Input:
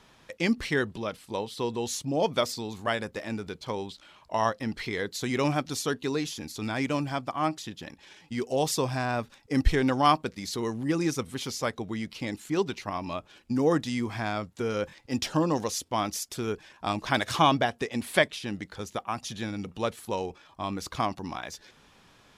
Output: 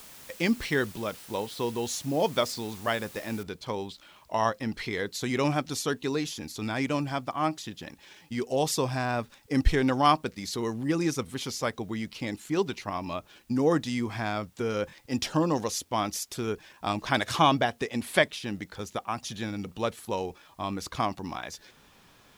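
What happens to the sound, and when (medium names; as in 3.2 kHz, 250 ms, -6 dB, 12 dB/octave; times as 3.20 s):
3.43 s: noise floor step -49 dB -68 dB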